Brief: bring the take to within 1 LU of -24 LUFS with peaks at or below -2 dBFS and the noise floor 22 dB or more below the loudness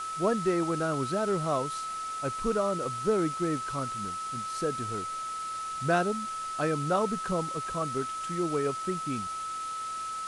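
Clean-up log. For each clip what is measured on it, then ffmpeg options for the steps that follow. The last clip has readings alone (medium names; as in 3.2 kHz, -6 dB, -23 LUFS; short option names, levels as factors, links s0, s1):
steady tone 1.3 kHz; tone level -33 dBFS; noise floor -36 dBFS; noise floor target -53 dBFS; loudness -30.5 LUFS; peak level -15.0 dBFS; loudness target -24.0 LUFS
-> -af "bandreject=f=1300:w=30"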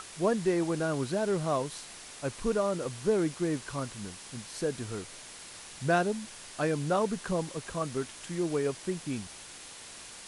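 steady tone not found; noise floor -47 dBFS; noise floor target -54 dBFS
-> -af "afftdn=nr=7:nf=-47"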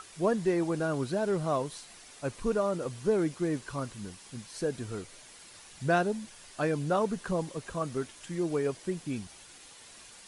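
noise floor -52 dBFS; noise floor target -54 dBFS
-> -af "afftdn=nr=6:nf=-52"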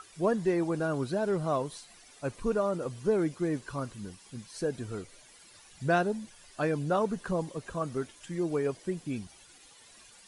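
noise floor -56 dBFS; loudness -32.0 LUFS; peak level -15.5 dBFS; loudness target -24.0 LUFS
-> -af "volume=2.51"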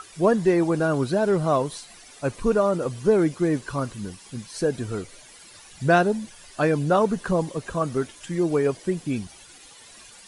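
loudness -24.0 LUFS; peak level -7.5 dBFS; noise floor -48 dBFS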